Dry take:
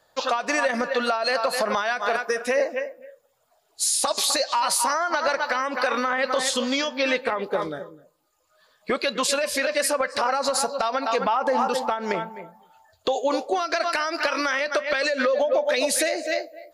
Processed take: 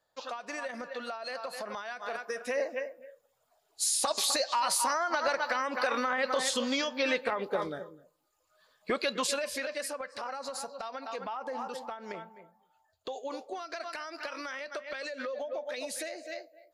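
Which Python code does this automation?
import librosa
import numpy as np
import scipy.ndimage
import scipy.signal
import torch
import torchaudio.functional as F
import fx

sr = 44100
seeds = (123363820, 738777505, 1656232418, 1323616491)

y = fx.gain(x, sr, db=fx.line((1.88, -15.0), (2.94, -6.0), (9.13, -6.0), (10.01, -15.0)))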